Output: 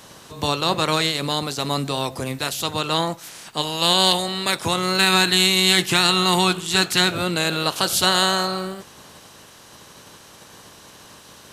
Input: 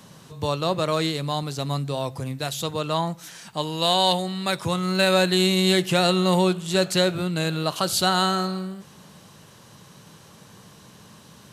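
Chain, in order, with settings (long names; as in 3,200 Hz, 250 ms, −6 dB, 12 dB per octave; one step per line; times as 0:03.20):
ceiling on every frequency bin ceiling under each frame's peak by 14 dB
0:04.98–0:07.12: parametric band 570 Hz −11 dB 0.44 octaves
level +3 dB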